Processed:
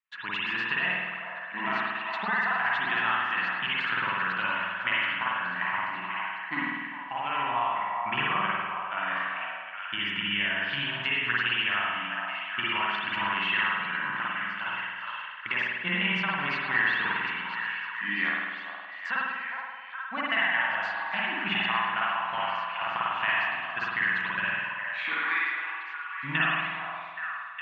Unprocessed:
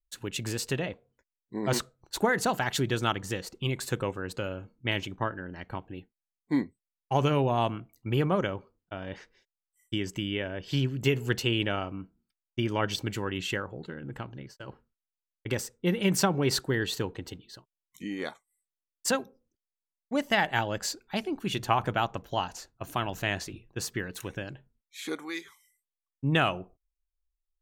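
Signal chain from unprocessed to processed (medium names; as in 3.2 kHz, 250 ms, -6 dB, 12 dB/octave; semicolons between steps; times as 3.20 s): resonant low shelf 640 Hz -13.5 dB, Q 3; compression, threshold -35 dBFS, peak gain reduction 18 dB; cabinet simulation 190–2900 Hz, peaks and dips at 190 Hz +7 dB, 520 Hz -4 dB, 840 Hz -8 dB, 1.8 kHz +6 dB, 2.7 kHz +5 dB; repeats whose band climbs or falls 412 ms, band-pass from 820 Hz, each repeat 0.7 oct, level -3 dB; spring tank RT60 1.4 s, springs 49 ms, chirp 65 ms, DRR -5.5 dB; trim +5 dB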